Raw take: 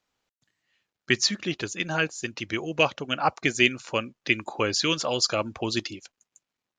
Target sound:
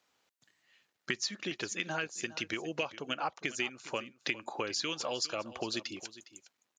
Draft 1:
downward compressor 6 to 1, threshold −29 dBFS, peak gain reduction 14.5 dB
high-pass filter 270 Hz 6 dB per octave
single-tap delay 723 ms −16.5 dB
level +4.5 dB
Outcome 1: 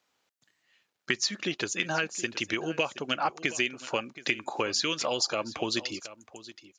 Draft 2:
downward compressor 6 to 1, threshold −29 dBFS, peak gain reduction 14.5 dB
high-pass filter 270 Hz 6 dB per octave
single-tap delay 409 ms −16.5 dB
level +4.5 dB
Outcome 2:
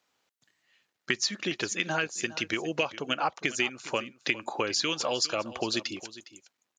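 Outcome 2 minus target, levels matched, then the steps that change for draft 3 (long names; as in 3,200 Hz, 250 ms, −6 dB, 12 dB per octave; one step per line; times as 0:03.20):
downward compressor: peak gain reduction −6 dB
change: downward compressor 6 to 1, threshold −36.5 dBFS, peak gain reduction 20.5 dB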